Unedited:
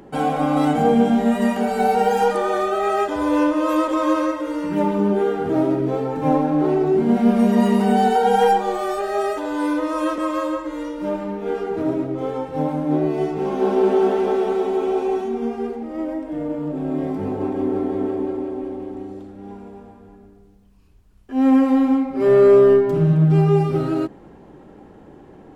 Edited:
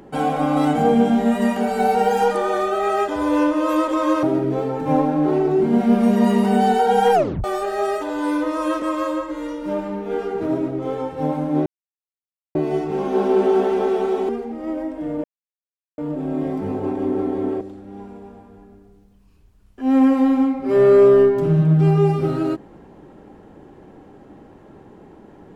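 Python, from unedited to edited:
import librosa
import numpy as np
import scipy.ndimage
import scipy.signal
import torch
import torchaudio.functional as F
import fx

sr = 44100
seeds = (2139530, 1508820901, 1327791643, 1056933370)

y = fx.edit(x, sr, fx.cut(start_s=4.23, length_s=1.36),
    fx.tape_stop(start_s=8.5, length_s=0.3),
    fx.insert_silence(at_s=13.02, length_s=0.89),
    fx.cut(start_s=14.76, length_s=0.84),
    fx.insert_silence(at_s=16.55, length_s=0.74),
    fx.cut(start_s=18.18, length_s=0.94), tone=tone)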